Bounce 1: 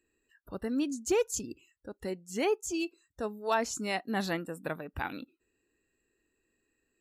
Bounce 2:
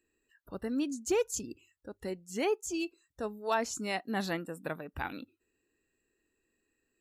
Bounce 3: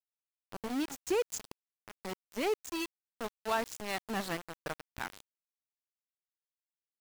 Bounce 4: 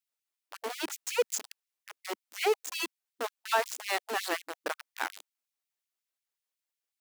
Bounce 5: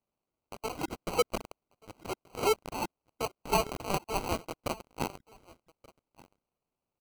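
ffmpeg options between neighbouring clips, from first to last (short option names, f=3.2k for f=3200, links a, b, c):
-af "bandreject=f=50:t=h:w=6,bandreject=f=100:t=h:w=6,volume=-1.5dB"
-af "aeval=exprs='val(0)*gte(abs(val(0)),0.0224)':c=same,volume=-1.5dB"
-af "afftfilt=real='re*gte(b*sr/1024,240*pow(2100/240,0.5+0.5*sin(2*PI*5.5*pts/sr)))':imag='im*gte(b*sr/1024,240*pow(2100/240,0.5+0.5*sin(2*PI*5.5*pts/sr)))':win_size=1024:overlap=0.75,volume=6dB"
-af "aecho=1:1:1181:0.0668,acrusher=samples=25:mix=1:aa=0.000001"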